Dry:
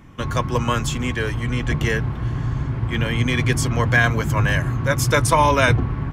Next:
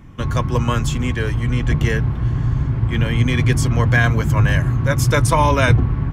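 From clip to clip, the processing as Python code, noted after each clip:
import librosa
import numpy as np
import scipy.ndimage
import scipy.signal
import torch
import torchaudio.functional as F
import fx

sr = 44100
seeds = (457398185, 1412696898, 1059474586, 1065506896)

y = fx.low_shelf(x, sr, hz=210.0, db=7.5)
y = F.gain(torch.from_numpy(y), -1.0).numpy()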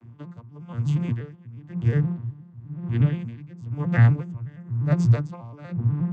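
y = fx.vocoder_arp(x, sr, chord='major triad', root=46, every_ms=120)
y = y * 10.0 ** (-23 * (0.5 - 0.5 * np.cos(2.0 * np.pi * 1.0 * np.arange(len(y)) / sr)) / 20.0)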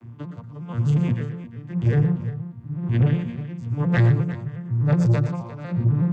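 y = 10.0 ** (-18.0 / 20.0) * np.tanh(x / 10.0 ** (-18.0 / 20.0))
y = fx.echo_multitap(y, sr, ms=(95, 120, 351), db=(-19.0, -10.5, -14.5))
y = F.gain(torch.from_numpy(y), 5.0).numpy()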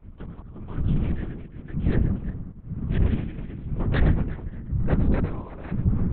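y = fx.tracing_dist(x, sr, depth_ms=0.12)
y = fx.lpc_vocoder(y, sr, seeds[0], excitation='whisper', order=8)
y = F.gain(torch.from_numpy(y), -2.5).numpy()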